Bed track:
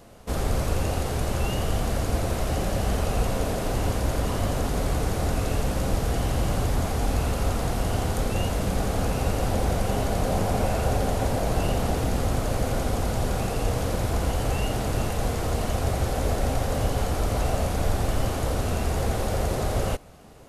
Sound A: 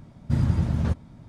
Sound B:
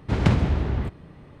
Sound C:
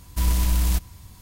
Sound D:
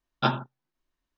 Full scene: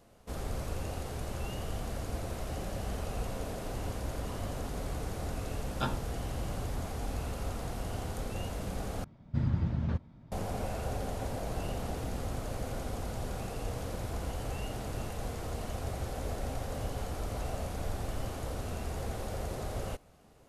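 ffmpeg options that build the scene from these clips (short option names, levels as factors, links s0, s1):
-filter_complex "[0:a]volume=0.266[s0];[1:a]lowpass=4300[s1];[s0]asplit=2[s2][s3];[s2]atrim=end=9.044[s4];[s1]atrim=end=1.28,asetpts=PTS-STARTPTS,volume=0.422[s5];[s3]atrim=start=10.316[s6];[4:a]atrim=end=1.17,asetpts=PTS-STARTPTS,volume=0.316,afade=t=in:d=0.004:c=hsin,afade=t=out:st=1.166:d=0.004:c=hsin,adelay=5580[s7];[s4][s5]acrossfade=d=0.004:c1=hsin:c2=hsin[s8];[s8][s6]acrossfade=d=0.004:c1=hsin:c2=hsin[s9];[s9][s7]amix=inputs=2:normalize=0"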